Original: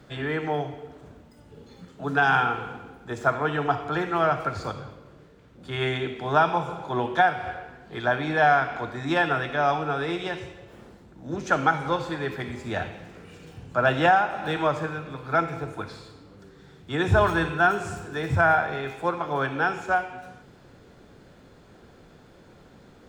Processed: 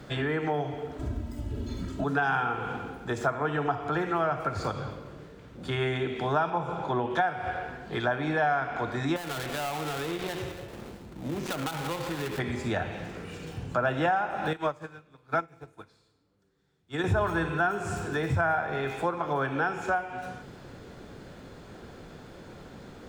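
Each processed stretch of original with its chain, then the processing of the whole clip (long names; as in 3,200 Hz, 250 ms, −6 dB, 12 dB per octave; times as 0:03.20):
0:00.99–0:02.04: bass and treble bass +14 dB, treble +2 dB + comb filter 3.1 ms, depth 86%
0:06.50–0:07.11: downward expander −33 dBFS + high-shelf EQ 5,100 Hz −8 dB + upward compression, threshold −29 dBFS
0:09.16–0:12.39: gap after every zero crossing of 0.22 ms + downward compressor 3 to 1, threshold −34 dBFS
0:14.53–0:17.04: high-shelf EQ 4,800 Hz +7 dB + expander for the loud parts 2.5 to 1, over −37 dBFS
whole clip: dynamic equaliser 4,000 Hz, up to −5 dB, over −39 dBFS, Q 0.73; downward compressor 2.5 to 1, threshold −34 dBFS; level +5.5 dB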